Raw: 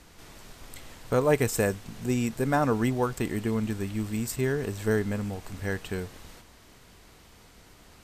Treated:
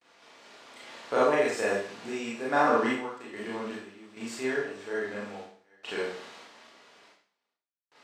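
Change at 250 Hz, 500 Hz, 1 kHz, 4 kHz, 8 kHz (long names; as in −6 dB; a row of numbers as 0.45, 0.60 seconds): −6.5, −0.5, +3.5, +1.0, −8.0 decibels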